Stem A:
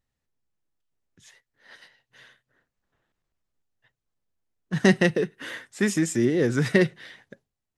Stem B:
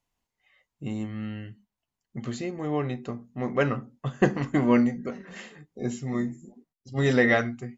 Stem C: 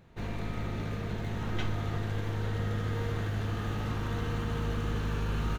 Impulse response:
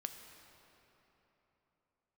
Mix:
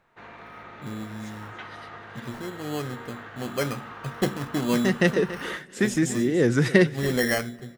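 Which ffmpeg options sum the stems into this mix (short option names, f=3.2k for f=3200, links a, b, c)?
-filter_complex "[0:a]volume=1dB,asplit=3[a][b][c];[b]volume=-16dB[d];[c]volume=-16dB[e];[1:a]acrusher=samples=12:mix=1:aa=0.000001,volume=-4.5dB,asplit=3[f][g][h];[g]volume=-14dB[i];[2:a]bandpass=f=1.3k:t=q:w=1.1:csg=0,volume=2.5dB[j];[h]apad=whole_len=342968[k];[a][k]sidechaincompress=threshold=-34dB:ratio=8:attack=23:release=267[l];[3:a]atrim=start_sample=2205[m];[d][i]amix=inputs=2:normalize=0[n];[n][m]afir=irnorm=-1:irlink=0[o];[e]aecho=0:1:283:1[p];[l][f][j][o][p]amix=inputs=5:normalize=0"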